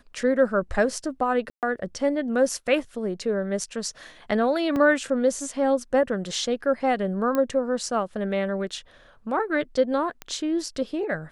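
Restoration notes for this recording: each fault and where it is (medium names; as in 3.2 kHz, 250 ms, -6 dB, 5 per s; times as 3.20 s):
1.50–1.63 s: dropout 128 ms
4.76 s: dropout 2.8 ms
7.35 s: pop -13 dBFS
10.22 s: pop -18 dBFS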